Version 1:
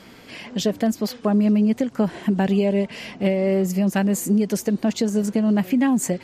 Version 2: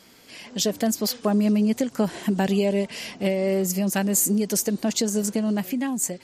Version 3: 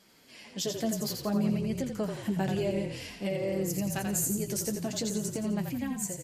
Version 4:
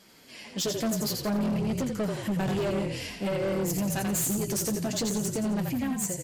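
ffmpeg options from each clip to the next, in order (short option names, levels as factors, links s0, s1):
-af "bass=f=250:g=-3,treble=f=4000:g=11,dynaudnorm=f=100:g=11:m=3.76,volume=0.376"
-filter_complex "[0:a]flanger=delay=4.7:depth=9.6:regen=-34:speed=0.54:shape=triangular,asplit=2[s0][s1];[s1]asplit=5[s2][s3][s4][s5][s6];[s2]adelay=86,afreqshift=-37,volume=0.531[s7];[s3]adelay=172,afreqshift=-74,volume=0.24[s8];[s4]adelay=258,afreqshift=-111,volume=0.107[s9];[s5]adelay=344,afreqshift=-148,volume=0.0484[s10];[s6]adelay=430,afreqshift=-185,volume=0.0219[s11];[s7][s8][s9][s10][s11]amix=inputs=5:normalize=0[s12];[s0][s12]amix=inputs=2:normalize=0,volume=0.531"
-af "asoftclip=type=hard:threshold=0.0316,volume=1.78"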